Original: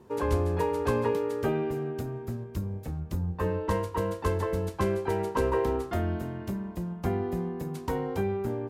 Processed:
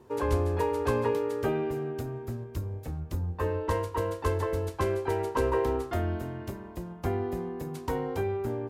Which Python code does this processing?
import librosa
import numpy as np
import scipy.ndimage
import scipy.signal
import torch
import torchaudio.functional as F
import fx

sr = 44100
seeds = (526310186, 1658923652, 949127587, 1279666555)

y = fx.peak_eq(x, sr, hz=190.0, db=-15.0, octaves=0.23)